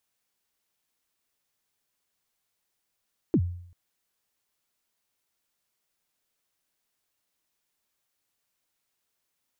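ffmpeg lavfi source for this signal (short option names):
-f lavfi -i "aevalsrc='0.158*pow(10,-3*t/0.64)*sin(2*PI*(390*0.063/log(88/390)*(exp(log(88/390)*min(t,0.063)/0.063)-1)+88*max(t-0.063,0)))':d=0.39:s=44100"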